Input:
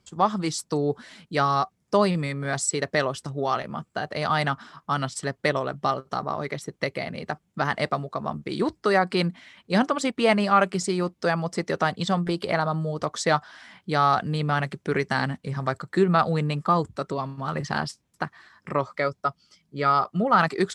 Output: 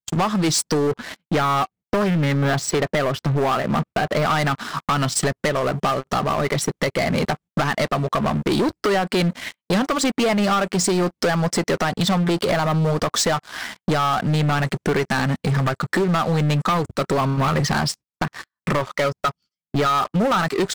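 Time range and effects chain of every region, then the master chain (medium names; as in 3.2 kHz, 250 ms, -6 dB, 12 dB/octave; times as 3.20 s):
0.87–4.34 s: distance through air 180 m + loudspeaker Doppler distortion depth 0.22 ms
whole clip: gate -46 dBFS, range -28 dB; compression 8:1, threshold -32 dBFS; waveshaping leveller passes 5; trim +2 dB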